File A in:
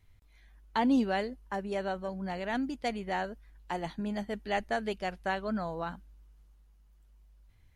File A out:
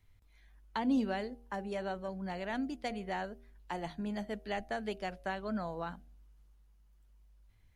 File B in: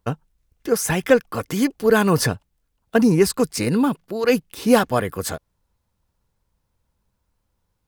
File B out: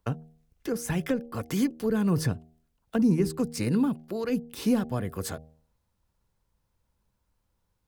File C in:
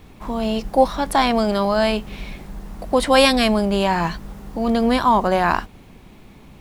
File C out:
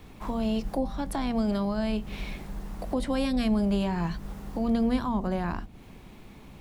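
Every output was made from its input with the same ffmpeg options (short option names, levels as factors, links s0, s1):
-filter_complex "[0:a]acrossover=split=290[s0][s1];[s1]acompressor=threshold=0.0355:ratio=8[s2];[s0][s2]amix=inputs=2:normalize=0,bandreject=f=78.84:t=h:w=4,bandreject=f=157.68:t=h:w=4,bandreject=f=236.52:t=h:w=4,bandreject=f=315.36:t=h:w=4,bandreject=f=394.2:t=h:w=4,bandreject=f=473.04:t=h:w=4,bandreject=f=551.88:t=h:w=4,bandreject=f=630.72:t=h:w=4,bandreject=f=709.56:t=h:w=4,bandreject=f=788.4:t=h:w=4,volume=0.708"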